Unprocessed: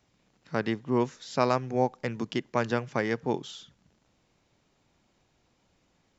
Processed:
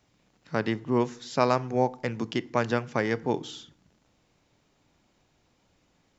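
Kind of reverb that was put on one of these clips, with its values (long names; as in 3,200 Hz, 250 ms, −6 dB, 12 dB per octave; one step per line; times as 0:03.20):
feedback delay network reverb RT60 0.63 s, low-frequency decay 1.5×, high-frequency decay 0.65×, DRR 17.5 dB
level +1.5 dB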